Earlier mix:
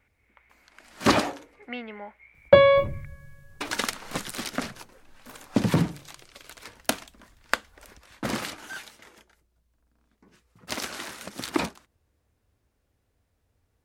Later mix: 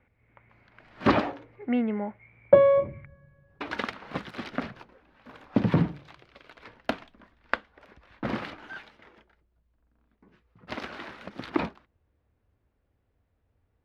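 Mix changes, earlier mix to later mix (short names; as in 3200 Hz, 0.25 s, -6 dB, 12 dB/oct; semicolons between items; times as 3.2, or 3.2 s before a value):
speech: remove HPF 1300 Hz 6 dB/oct; second sound: add band-pass 420 Hz, Q 0.61; master: add air absorption 340 m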